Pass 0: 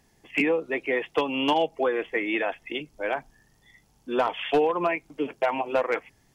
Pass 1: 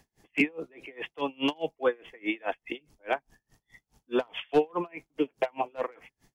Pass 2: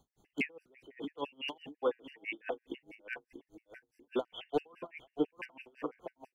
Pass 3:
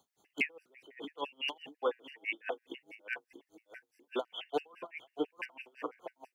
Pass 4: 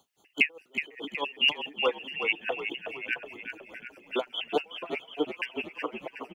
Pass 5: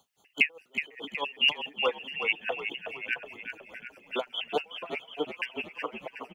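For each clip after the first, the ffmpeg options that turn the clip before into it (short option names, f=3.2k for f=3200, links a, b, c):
-filter_complex "[0:a]acrossover=split=480|3000[a][b][c];[b]acompressor=threshold=-24dB:ratio=6[d];[a][d][c]amix=inputs=3:normalize=0,aeval=exprs='val(0)*pow(10,-33*(0.5-0.5*cos(2*PI*4.8*n/s))/20)':c=same,volume=2.5dB"
-filter_complex "[0:a]asplit=2[a][b];[b]adelay=638,lowpass=f=940:p=1,volume=-8.5dB,asplit=2[c][d];[d]adelay=638,lowpass=f=940:p=1,volume=0.38,asplit=2[e][f];[f]adelay=638,lowpass=f=940:p=1,volume=0.38,asplit=2[g][h];[h]adelay=638,lowpass=f=940:p=1,volume=0.38[i];[a][c][e][g][i]amix=inputs=5:normalize=0,afftfilt=real='re*gt(sin(2*PI*6*pts/sr)*(1-2*mod(floor(b*sr/1024/1500),2)),0)':imag='im*gt(sin(2*PI*6*pts/sr)*(1-2*mod(floor(b*sr/1024/1500),2)),0)':win_size=1024:overlap=0.75,volume=-5.5dB"
-af "highpass=f=740:p=1,volume=4dB"
-filter_complex "[0:a]equalizer=f=2.8k:w=4.3:g=9,asplit=2[a][b];[b]asplit=7[c][d][e][f][g][h][i];[c]adelay=369,afreqshift=-38,volume=-8dB[j];[d]adelay=738,afreqshift=-76,volume=-13.2dB[k];[e]adelay=1107,afreqshift=-114,volume=-18.4dB[l];[f]adelay=1476,afreqshift=-152,volume=-23.6dB[m];[g]adelay=1845,afreqshift=-190,volume=-28.8dB[n];[h]adelay=2214,afreqshift=-228,volume=-34dB[o];[i]adelay=2583,afreqshift=-266,volume=-39.2dB[p];[j][k][l][m][n][o][p]amix=inputs=7:normalize=0[q];[a][q]amix=inputs=2:normalize=0,volume=5dB"
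-af "equalizer=f=330:t=o:w=0.59:g=-7"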